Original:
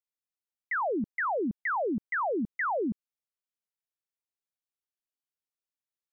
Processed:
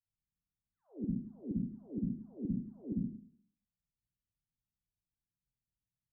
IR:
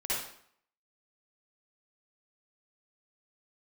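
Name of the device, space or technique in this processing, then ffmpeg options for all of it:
club heard from the street: -filter_complex "[0:a]alimiter=level_in=12.5dB:limit=-24dB:level=0:latency=1,volume=-12.5dB,lowpass=frequency=180:width=0.5412,lowpass=frequency=180:width=1.3066[link_01];[1:a]atrim=start_sample=2205[link_02];[link_01][link_02]afir=irnorm=-1:irlink=0,volume=14.5dB"

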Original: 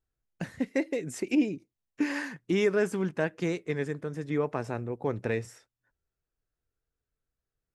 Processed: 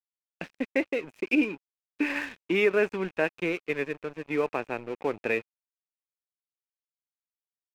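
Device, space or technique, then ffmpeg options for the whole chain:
pocket radio on a weak battery: -af "highpass=280,lowpass=3200,aeval=exprs='sgn(val(0))*max(abs(val(0))-0.00531,0)':channel_layout=same,equalizer=frequency=2500:width_type=o:width=0.27:gain=12,volume=3.5dB"

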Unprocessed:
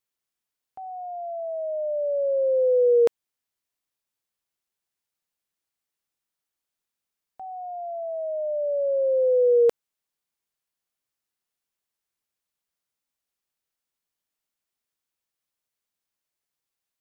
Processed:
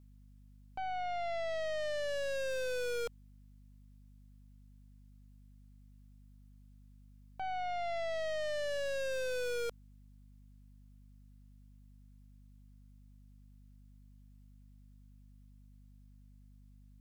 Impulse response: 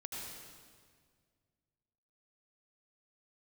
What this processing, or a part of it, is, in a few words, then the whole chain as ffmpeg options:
valve amplifier with mains hum: -filter_complex "[0:a]asettb=1/sr,asplit=3[link_01][link_02][link_03];[link_01]atrim=end=7.444[link_04];[link_02]atrim=start=7.44:end=8.77,asetpts=PTS-STARTPTS,afade=type=in:duration=0.004:curve=qsin,afade=type=out:start_time=1.326:duration=0.004:curve=qsin,lowshelf=frequency=240:gain=5[link_05];[link_03]atrim=start=8.766[link_06];[link_04][link_05]acrossfade=duration=0.004:curve1=hsin:curve2=qsin[link_07];[link_07][link_06]acrossfade=duration=0.004:curve1=qsin:curve2=hsin,aeval=exprs='(tanh(112*val(0)+0.55)-tanh(0.55))/112':channel_layout=same,aeval=exprs='val(0)+0.000794*(sin(2*PI*50*n/s)+sin(2*PI*2*50*n/s)/2+sin(2*PI*3*50*n/s)/3+sin(2*PI*4*50*n/s)/4+sin(2*PI*5*50*n/s)/5)':channel_layout=same,volume=5dB"

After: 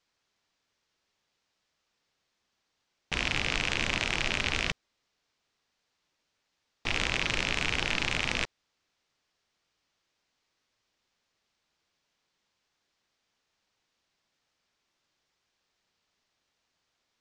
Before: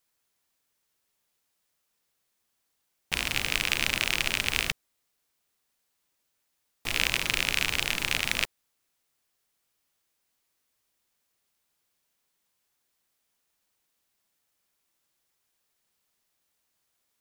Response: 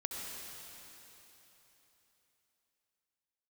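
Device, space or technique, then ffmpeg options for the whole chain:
synthesiser wavefolder: -af "aeval=exprs='0.168*(abs(mod(val(0)/0.168+3,4)-2)-1)':channel_layout=same,lowpass=frequency=5900:width=0.5412,lowpass=frequency=5900:width=1.3066,volume=3dB"

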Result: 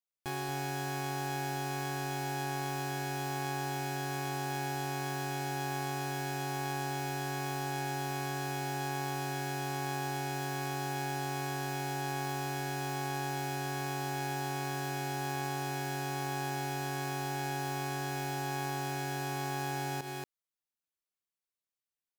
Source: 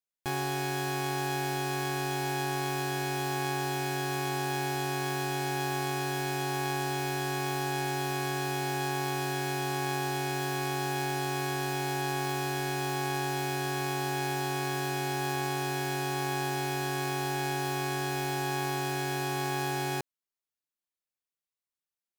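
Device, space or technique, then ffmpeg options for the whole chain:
ducked delay: -filter_complex "[0:a]asplit=3[link_01][link_02][link_03];[link_02]adelay=231,volume=-3dB[link_04];[link_03]apad=whole_len=988326[link_05];[link_04][link_05]sidechaincompress=threshold=-36dB:ratio=8:attack=7.4:release=122[link_06];[link_01][link_06]amix=inputs=2:normalize=0,volume=-5dB"

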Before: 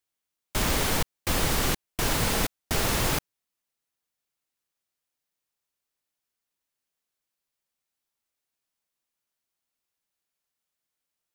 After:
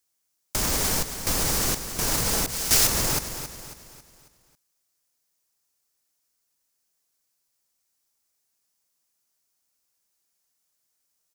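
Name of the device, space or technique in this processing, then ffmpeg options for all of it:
over-bright horn tweeter: -filter_complex "[0:a]highshelf=frequency=4300:width_type=q:width=1.5:gain=6,alimiter=limit=-18.5dB:level=0:latency=1:release=69,aecho=1:1:273|546|819|1092|1365:0.316|0.139|0.0612|0.0269|0.0119,asettb=1/sr,asplit=3[link_01][link_02][link_03];[link_01]atrim=end=2.464[link_04];[link_02]atrim=start=2.46:end=2.87,asetpts=PTS-STARTPTS,afade=type=in:duration=0.004:curve=qsin,afade=type=out:start_time=0.406:duration=0.004:curve=qsin,adynamicequalizer=threshold=0.00282:dfrequency=1600:dqfactor=0.7:tfrequency=1600:tqfactor=0.7:attack=5:release=100:ratio=0.375:range=4:mode=boostabove:tftype=highshelf[link_05];[link_03]atrim=start=2.866[link_06];[link_04][link_05]acrossfade=duration=0.004:curve1=hsin:curve2=qsin[link_07];[link_07][link_06]acrossfade=duration=0.004:curve1=qsin:curve2=hsin,volume=4dB"

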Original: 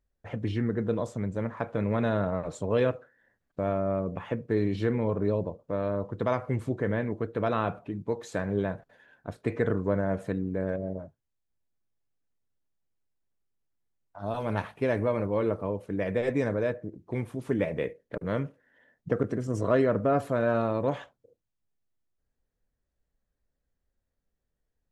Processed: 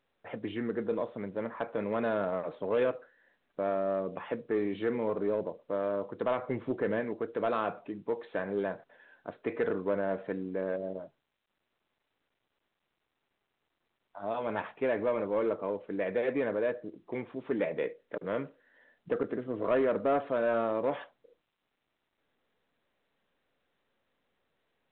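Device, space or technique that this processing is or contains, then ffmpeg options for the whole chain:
telephone: -filter_complex "[0:a]asettb=1/sr,asplit=3[link_01][link_02][link_03];[link_01]atrim=end=6.384[link_04];[link_02]atrim=start=6.38:end=7,asetpts=PTS-STARTPTS,afade=type=in:duration=0.004:curve=qsin,afade=type=out:start_time=0.616:duration=0.004:curve=qsin,lowshelf=frequency=460:gain=4[link_05];[link_03]atrim=start=6.996[link_06];[link_04][link_05]acrossfade=duration=0.004:curve1=hsin:curve2=qsin[link_07];[link_07][link_06]acrossfade=duration=0.004:curve1=qsin:curve2=hsin,highpass=290,lowpass=3500,asoftclip=type=tanh:threshold=-20dB" -ar 8000 -c:a pcm_mulaw

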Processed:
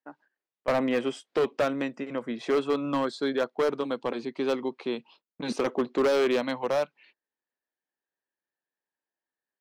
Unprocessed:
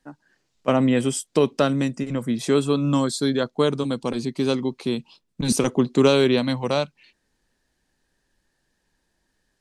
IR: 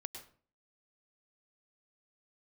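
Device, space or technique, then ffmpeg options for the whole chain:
walkie-talkie: -af "highpass=410,lowpass=2500,asoftclip=type=hard:threshold=-19.5dB,agate=range=-18dB:threshold=-59dB:ratio=16:detection=peak"

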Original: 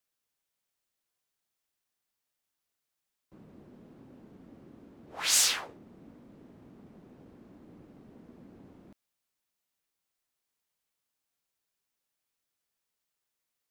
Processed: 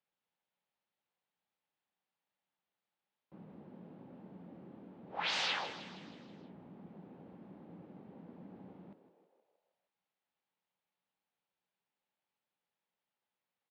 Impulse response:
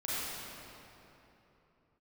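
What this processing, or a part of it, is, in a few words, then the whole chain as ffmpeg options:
frequency-shifting delay pedal into a guitar cabinet: -filter_complex "[0:a]asplit=7[link_01][link_02][link_03][link_04][link_05][link_06][link_07];[link_02]adelay=157,afreqshift=63,volume=-12dB[link_08];[link_03]adelay=314,afreqshift=126,volume=-17dB[link_09];[link_04]adelay=471,afreqshift=189,volume=-22.1dB[link_10];[link_05]adelay=628,afreqshift=252,volume=-27.1dB[link_11];[link_06]adelay=785,afreqshift=315,volume=-32.1dB[link_12];[link_07]adelay=942,afreqshift=378,volume=-37.2dB[link_13];[link_01][link_08][link_09][link_10][link_11][link_12][link_13]amix=inputs=7:normalize=0,highpass=110,equalizer=frequency=180:width_type=q:width=4:gain=9,equalizer=frequency=540:width_type=q:width=4:gain=4,equalizer=frequency=840:width_type=q:width=4:gain=8,lowpass=frequency=3700:width=0.5412,lowpass=frequency=3700:width=1.3066,volume=-3dB"

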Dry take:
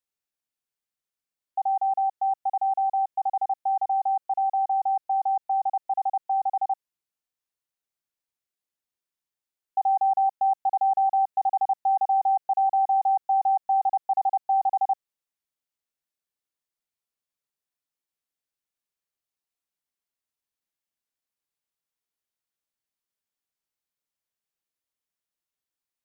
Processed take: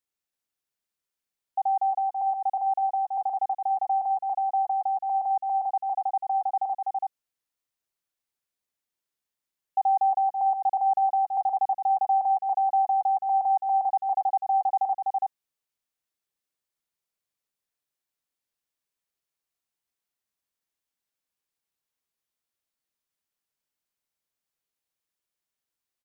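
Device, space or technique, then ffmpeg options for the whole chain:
ducked delay: -filter_complex "[0:a]asplit=3[link_01][link_02][link_03];[link_02]adelay=330,volume=-3dB[link_04];[link_03]apad=whole_len=1162944[link_05];[link_04][link_05]sidechaincompress=threshold=-30dB:ratio=5:attack=16:release=213[link_06];[link_01][link_06]amix=inputs=2:normalize=0"

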